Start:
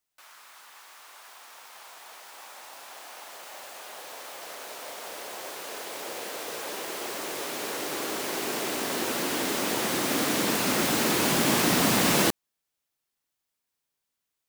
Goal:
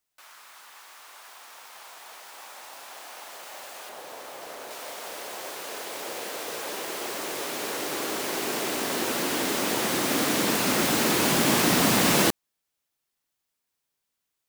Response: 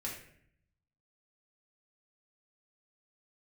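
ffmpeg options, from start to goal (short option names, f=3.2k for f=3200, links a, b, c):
-filter_complex "[0:a]asettb=1/sr,asplit=3[a][b][c];[a]atrim=end=3.894[d];[b]atrim=start=3.89:end=4.71,asetpts=PTS-STARTPTS,afade=t=in:d=0.004:c=qsin,afade=t=out:st=0.816:d=0.004:c=qsin,tiltshelf=f=970:g=4[e];[c]atrim=start=4.706[f];[d][e]acrossfade=d=0.004:c1=hsin:c2=qsin[g];[g][f]acrossfade=d=0.004:c1=qsin:c2=hsin,volume=1.5dB"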